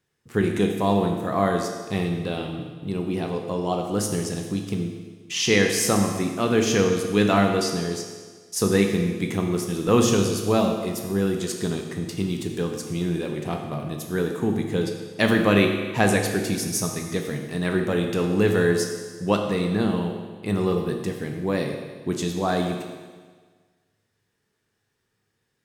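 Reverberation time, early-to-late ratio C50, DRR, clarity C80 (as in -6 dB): 1.5 s, 5.0 dB, 2.5 dB, 6.0 dB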